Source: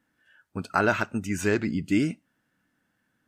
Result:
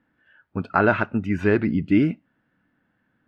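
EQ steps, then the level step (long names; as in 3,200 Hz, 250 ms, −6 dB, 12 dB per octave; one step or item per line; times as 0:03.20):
high-frequency loss of the air 390 metres
+6.0 dB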